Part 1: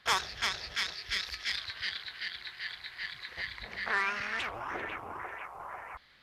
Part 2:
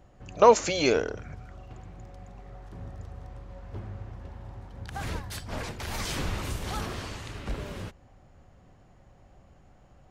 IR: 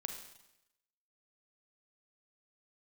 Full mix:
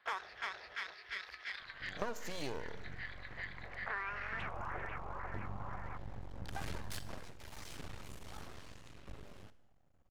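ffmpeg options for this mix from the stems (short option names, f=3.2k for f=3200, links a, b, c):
-filter_complex "[0:a]acrossover=split=340 2300:gain=0.178 1 0.158[a][b][c];[a][b][c]amix=inputs=3:normalize=0,volume=-3.5dB[d];[1:a]dynaudnorm=f=420:g=11:m=5dB,aeval=exprs='max(val(0),0)':c=same,adelay=1600,volume=-8.5dB,afade=t=out:st=6.98:d=0.21:silence=0.237137,asplit=2[e][f];[f]volume=-6dB[g];[2:a]atrim=start_sample=2205[h];[g][h]afir=irnorm=-1:irlink=0[i];[d][e][i]amix=inputs=3:normalize=0,acompressor=threshold=-35dB:ratio=6"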